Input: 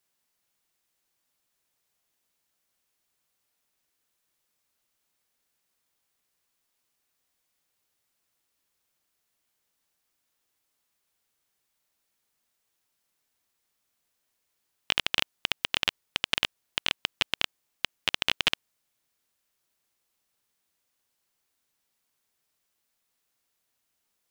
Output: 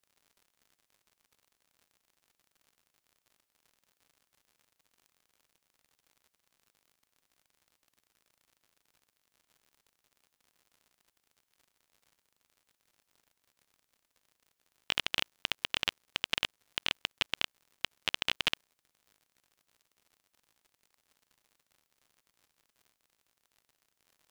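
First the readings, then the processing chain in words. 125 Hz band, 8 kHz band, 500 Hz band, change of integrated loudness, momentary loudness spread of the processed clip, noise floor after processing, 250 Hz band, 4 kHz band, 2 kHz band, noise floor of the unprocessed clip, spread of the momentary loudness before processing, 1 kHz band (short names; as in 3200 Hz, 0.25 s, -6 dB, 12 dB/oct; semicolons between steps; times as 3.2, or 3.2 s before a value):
-5.0 dB, -5.0 dB, -5.0 dB, -5.0 dB, 7 LU, -83 dBFS, -5.0 dB, -5.0 dB, -5.0 dB, -79 dBFS, 7 LU, -5.0 dB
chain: crackle 88/s -46 dBFS; gain -5 dB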